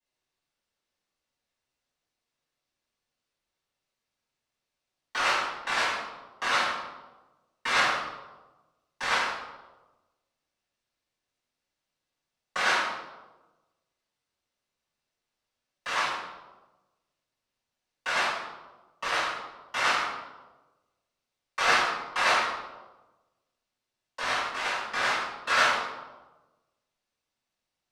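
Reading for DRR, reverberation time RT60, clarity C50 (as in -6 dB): -12.5 dB, 1.2 s, 1.0 dB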